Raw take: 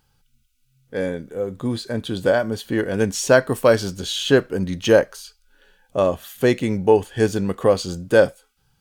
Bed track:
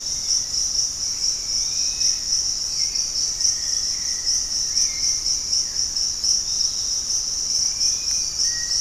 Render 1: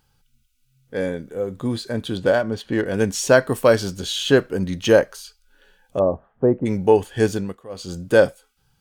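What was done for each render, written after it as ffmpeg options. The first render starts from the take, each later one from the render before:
-filter_complex "[0:a]asettb=1/sr,asplit=3[a][b][c];[a]atrim=end=2.174[d];[b]atrim=start=2.17:end=2.86,asetpts=PTS-STARTPTS,afade=t=in:d=0.004:c=qsin,afade=t=out:st=0.686:d=0.004:c=qsin,adynamicsmooth=sensitivity=6:basefreq=3.9k[e];[c]atrim=start=2.856[f];[d][e]acrossfade=d=0.004:c1=hsin:c2=qsin[g];[g][f]acrossfade=d=0.004:c1=qsin:c2=hsin,asplit=3[h][i][j];[h]afade=t=out:st=5.98:d=0.02[k];[i]lowpass=f=1k:w=0.5412,lowpass=f=1k:w=1.3066,afade=t=in:st=5.98:d=0.02,afade=t=out:st=6.65:d=0.02[l];[j]afade=t=in:st=6.65:d=0.02[m];[k][l][m]amix=inputs=3:normalize=0,asplit=3[n][o][p];[n]atrim=end=7.62,asetpts=PTS-STARTPTS,afade=t=out:st=7.31:d=0.31:silence=0.0749894[q];[o]atrim=start=7.62:end=7.69,asetpts=PTS-STARTPTS,volume=-22.5dB[r];[p]atrim=start=7.69,asetpts=PTS-STARTPTS,afade=t=in:d=0.31:silence=0.0749894[s];[q][r][s]concat=n=3:v=0:a=1"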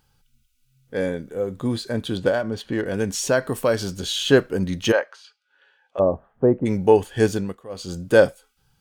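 -filter_complex "[0:a]asettb=1/sr,asplit=3[a][b][c];[a]atrim=end=2.284[d];[b]atrim=start=2.28:end=4.06,asetpts=PTS-STARTPTS,afade=t=in:d=0.004:c=qsin,afade=t=out:st=1.776:d=0.004:c=qsin,acompressor=threshold=-24dB:ratio=1.5:attack=3.2:release=140:knee=1:detection=peak[e];[c]atrim=start=4.056[f];[d][e]acrossfade=d=0.004:c1=hsin:c2=qsin[g];[g][f]acrossfade=d=0.004:c1=qsin:c2=hsin,asplit=3[h][i][j];[h]afade=t=out:st=4.91:d=0.02[k];[i]highpass=770,lowpass=3.1k,afade=t=in:st=4.91:d=0.02,afade=t=out:st=5.98:d=0.02[l];[j]afade=t=in:st=5.98:d=0.02[m];[k][l][m]amix=inputs=3:normalize=0"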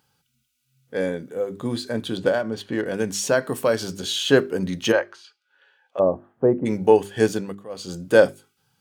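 -af "highpass=130,bandreject=f=50:t=h:w=6,bandreject=f=100:t=h:w=6,bandreject=f=150:t=h:w=6,bandreject=f=200:t=h:w=6,bandreject=f=250:t=h:w=6,bandreject=f=300:t=h:w=6,bandreject=f=350:t=h:w=6,bandreject=f=400:t=h:w=6"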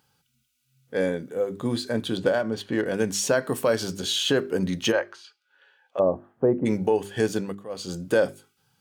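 -af "alimiter=limit=-11dB:level=0:latency=1:release=159"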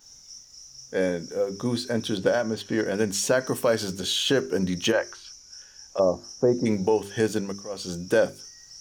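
-filter_complex "[1:a]volume=-24dB[a];[0:a][a]amix=inputs=2:normalize=0"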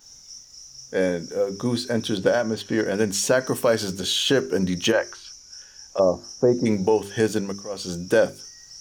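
-af "volume=2.5dB"

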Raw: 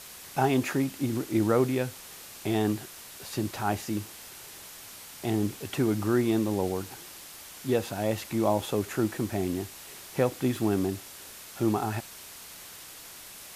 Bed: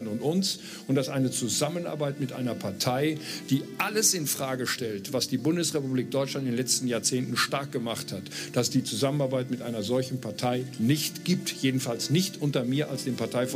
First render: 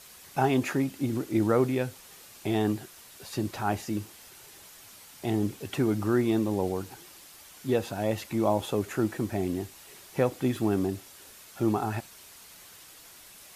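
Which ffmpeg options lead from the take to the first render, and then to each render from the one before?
-af "afftdn=nr=6:nf=-46"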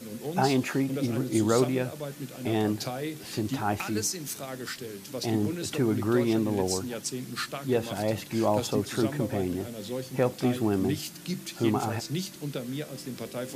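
-filter_complex "[1:a]volume=-7.5dB[a];[0:a][a]amix=inputs=2:normalize=0"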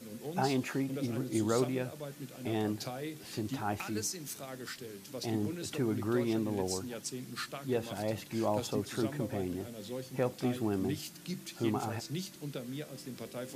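-af "volume=-6.5dB"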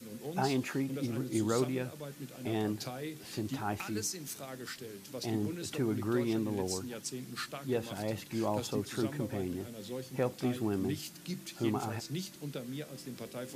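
-af "adynamicequalizer=threshold=0.00282:dfrequency=650:dqfactor=2.5:tfrequency=650:tqfactor=2.5:attack=5:release=100:ratio=0.375:range=2.5:mode=cutabove:tftype=bell"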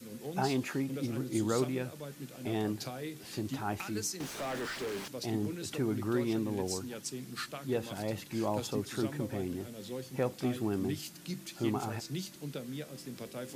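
-filter_complex "[0:a]asettb=1/sr,asplit=3[a][b][c];[a]atrim=end=4.204[d];[b]atrim=start=4.2:end=5.08,asetpts=PTS-STARTPTS,afade=t=in:d=0.004:c=qsin,afade=t=out:st=0.876:d=0.004:c=qsin,asplit=2[e][f];[f]highpass=f=720:p=1,volume=35dB,asoftclip=type=tanh:threshold=-28dB[g];[e][g]amix=inputs=2:normalize=0,lowpass=f=1.8k:p=1,volume=-6dB[h];[c]atrim=start=5.076[i];[d][h]acrossfade=d=0.004:c1=hsin:c2=qsin[j];[j][i]acrossfade=d=0.004:c1=qsin:c2=hsin"

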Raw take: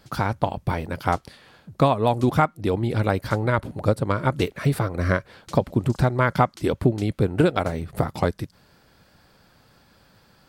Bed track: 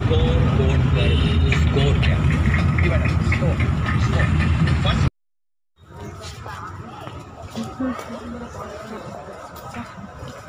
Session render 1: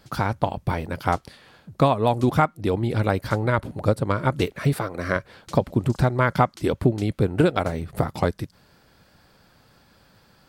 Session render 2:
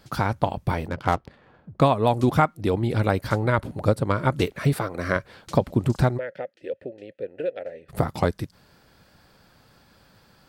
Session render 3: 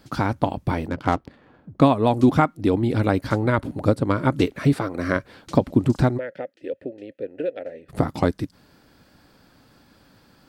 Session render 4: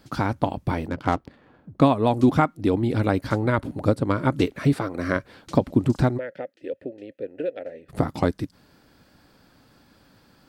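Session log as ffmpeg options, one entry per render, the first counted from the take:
-filter_complex "[0:a]asettb=1/sr,asplit=3[a][b][c];[a]atrim=end=4.734[d];[b]atrim=start=4.73:end=5.16,asetpts=PTS-STARTPTS,afade=t=in:d=0.004:c=qsin,afade=t=out:st=0.426:d=0.004:c=qsin,highpass=f=280:p=1[e];[c]atrim=start=5.156[f];[d][e]acrossfade=d=0.004:c1=hsin:c2=qsin[g];[g][f]acrossfade=d=0.004:c1=qsin:c2=hsin"
-filter_complex "[0:a]asettb=1/sr,asplit=3[a][b][c];[a]atrim=end=0.884[d];[b]atrim=start=0.88:end=1.81,asetpts=PTS-STARTPTS,afade=t=in:d=0.004:c=qsin,afade=t=out:st=0.926:d=0.004:c=qsin,adynamicsmooth=sensitivity=5.5:basefreq=1.3k[e];[c]atrim=start=1.806[f];[d][e]acrossfade=d=0.004:c1=hsin:c2=qsin[g];[g][f]acrossfade=d=0.004:c1=qsin:c2=hsin,asplit=3[h][i][j];[h]afade=t=out:st=6.17:d=0.02[k];[i]asplit=3[l][m][n];[l]bandpass=f=530:t=q:w=8,volume=0dB[o];[m]bandpass=f=1.84k:t=q:w=8,volume=-6dB[p];[n]bandpass=f=2.48k:t=q:w=8,volume=-9dB[q];[o][p][q]amix=inputs=3:normalize=0,afade=t=in:st=6.17:d=0.02,afade=t=out:st=7.88:d=0.02[r];[j]afade=t=in:st=7.88:d=0.02[s];[k][r][s]amix=inputs=3:normalize=0"
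-filter_complex "[0:a]acrossover=split=9100[a][b];[b]acompressor=threshold=-57dB:ratio=4:attack=1:release=60[c];[a][c]amix=inputs=2:normalize=0,equalizer=f=280:t=o:w=0.54:g=9"
-af "volume=-1.5dB"

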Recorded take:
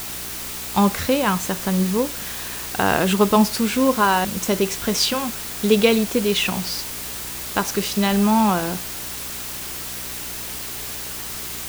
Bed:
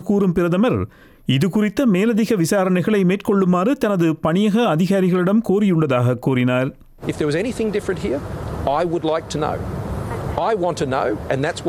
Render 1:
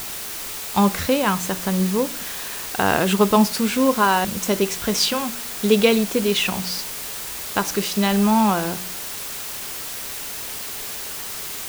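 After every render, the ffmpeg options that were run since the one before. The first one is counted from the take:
-af "bandreject=f=60:t=h:w=4,bandreject=f=120:t=h:w=4,bandreject=f=180:t=h:w=4,bandreject=f=240:t=h:w=4,bandreject=f=300:t=h:w=4,bandreject=f=360:t=h:w=4"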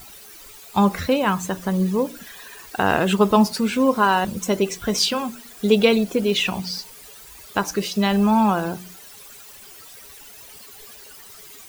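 -af "afftdn=nr=15:nf=-31"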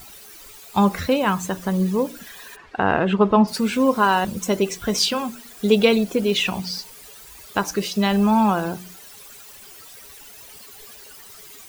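-filter_complex "[0:a]asplit=3[a][b][c];[a]afade=t=out:st=2.55:d=0.02[d];[b]lowpass=2.4k,afade=t=in:st=2.55:d=0.02,afade=t=out:st=3.47:d=0.02[e];[c]afade=t=in:st=3.47:d=0.02[f];[d][e][f]amix=inputs=3:normalize=0"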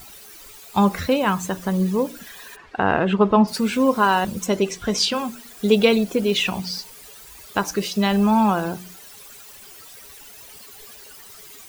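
-filter_complex "[0:a]asettb=1/sr,asplit=3[a][b][c];[a]atrim=end=4.464[d];[b]atrim=start=4.46:end=5.14,asetpts=PTS-STARTPTS,afade=t=in:d=0.004:c=qsin,afade=t=out:st=0.676:d=0.004:c=qsin,acrossover=split=9100[e][f];[f]acompressor=threshold=-51dB:ratio=4:attack=1:release=60[g];[e][g]amix=inputs=2:normalize=0[h];[c]atrim=start=5.136[i];[d][h]acrossfade=d=0.004:c1=hsin:c2=qsin[j];[j][i]acrossfade=d=0.004:c1=qsin:c2=hsin"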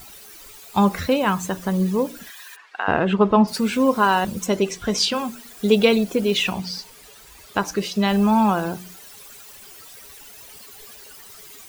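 -filter_complex "[0:a]asettb=1/sr,asplit=3[a][b][c];[a]atrim=end=2.304[d];[b]atrim=start=2.3:end=2.88,asetpts=PTS-STARTPTS,afade=t=in:d=0.004:c=qsin,afade=t=out:st=0.576:d=0.004:c=qsin,highpass=1.1k[e];[c]atrim=start=2.876[f];[d][e]acrossfade=d=0.004:c1=hsin:c2=qsin[g];[g][f]acrossfade=d=0.004:c1=qsin:c2=hsin,asettb=1/sr,asplit=3[h][i][j];[h]atrim=end=6.534[k];[i]atrim=start=6.53:end=8.08,asetpts=PTS-STARTPTS,afade=t=in:d=0.004:c=qsin,afade=t=out:st=1.546:d=0.004:c=qsin,highshelf=f=7.6k:g=-6[l];[j]atrim=start=8.076[m];[k][l]acrossfade=d=0.004:c1=hsin:c2=qsin[n];[n][m]acrossfade=d=0.004:c1=qsin:c2=hsin"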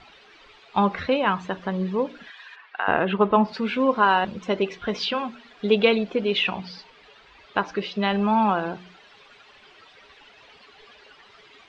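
-af "lowpass=f=3.6k:w=0.5412,lowpass=f=3.6k:w=1.3066,lowshelf=f=240:g=-10"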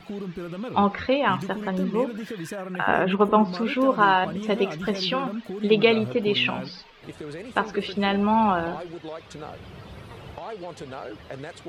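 -filter_complex "[1:a]volume=-17dB[a];[0:a][a]amix=inputs=2:normalize=0"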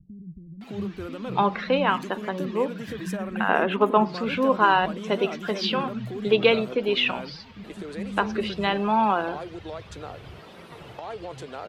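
-filter_complex "[0:a]acrossover=split=190[a][b];[b]adelay=610[c];[a][c]amix=inputs=2:normalize=0"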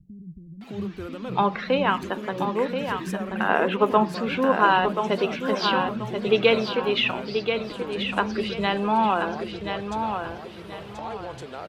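-af "aecho=1:1:1032|2064|3096|4128:0.473|0.142|0.0426|0.0128"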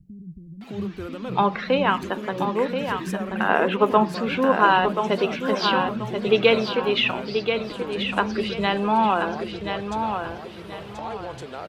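-af "volume=1.5dB"

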